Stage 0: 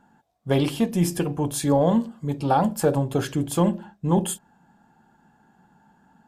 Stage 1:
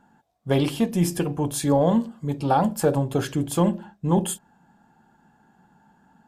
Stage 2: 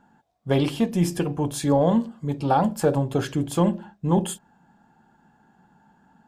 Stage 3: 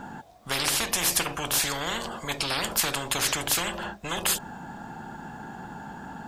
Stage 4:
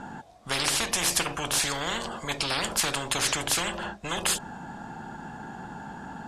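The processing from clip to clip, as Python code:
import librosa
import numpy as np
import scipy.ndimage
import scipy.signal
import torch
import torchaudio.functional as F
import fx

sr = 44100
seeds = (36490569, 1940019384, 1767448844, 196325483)

y1 = x
y2 = fx.peak_eq(y1, sr, hz=12000.0, db=-6.0, octaves=1.0)
y3 = fx.spectral_comp(y2, sr, ratio=10.0)
y4 = scipy.signal.sosfilt(scipy.signal.butter(4, 11000.0, 'lowpass', fs=sr, output='sos'), y3)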